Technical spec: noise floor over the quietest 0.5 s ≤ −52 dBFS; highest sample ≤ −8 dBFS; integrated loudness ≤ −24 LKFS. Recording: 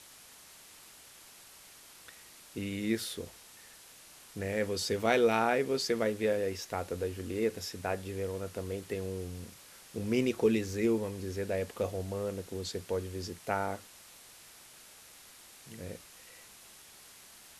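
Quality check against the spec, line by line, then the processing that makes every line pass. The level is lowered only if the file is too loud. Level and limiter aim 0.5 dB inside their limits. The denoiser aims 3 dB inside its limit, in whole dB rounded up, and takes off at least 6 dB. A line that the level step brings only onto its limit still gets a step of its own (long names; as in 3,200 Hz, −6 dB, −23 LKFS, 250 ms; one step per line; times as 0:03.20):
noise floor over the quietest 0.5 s −55 dBFS: in spec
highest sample −12.0 dBFS: in spec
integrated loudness −33.5 LKFS: in spec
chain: no processing needed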